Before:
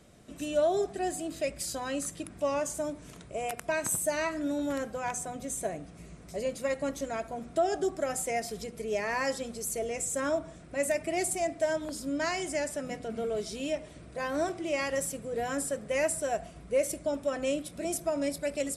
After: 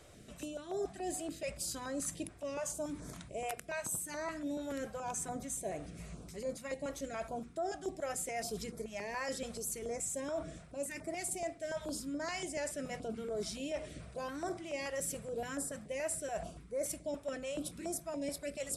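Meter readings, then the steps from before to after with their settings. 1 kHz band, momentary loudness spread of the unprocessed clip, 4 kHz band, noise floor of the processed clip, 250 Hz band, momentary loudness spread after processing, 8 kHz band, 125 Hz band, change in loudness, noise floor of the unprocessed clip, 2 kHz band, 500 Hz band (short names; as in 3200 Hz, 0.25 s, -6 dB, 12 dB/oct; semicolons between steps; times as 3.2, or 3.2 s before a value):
-8.0 dB, 8 LU, -5.5 dB, -54 dBFS, -7.0 dB, 5 LU, -4.5 dB, -4.0 dB, -7.5 dB, -50 dBFS, -8.5 dB, -9.0 dB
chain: reverse; compressor 4:1, threshold -38 dBFS, peak gain reduction 13.5 dB; reverse; stepped notch 7 Hz 210–2800 Hz; gain +2 dB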